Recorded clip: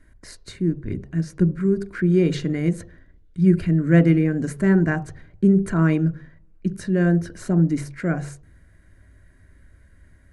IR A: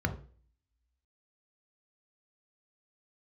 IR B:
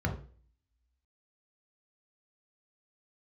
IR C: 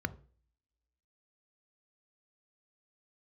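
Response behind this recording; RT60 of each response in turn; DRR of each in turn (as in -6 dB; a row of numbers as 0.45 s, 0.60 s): C; 0.40 s, 0.40 s, no single decay rate; 6.5 dB, 2.0 dB, 15.0 dB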